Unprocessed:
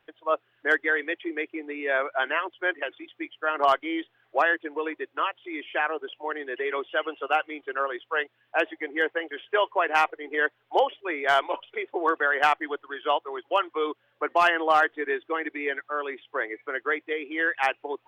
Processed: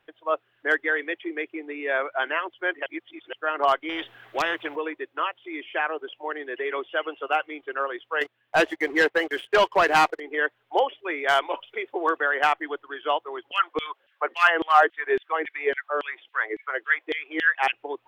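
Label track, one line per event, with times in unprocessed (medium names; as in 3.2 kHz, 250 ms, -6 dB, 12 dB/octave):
2.860000	3.330000	reverse
3.890000	4.760000	spectrum-flattening compressor 2:1
8.210000	10.200000	waveshaping leveller passes 2
11.040000	12.170000	treble shelf 4.2 kHz +6.5 dB
13.510000	17.730000	LFO high-pass saw down 3.6 Hz 280–3200 Hz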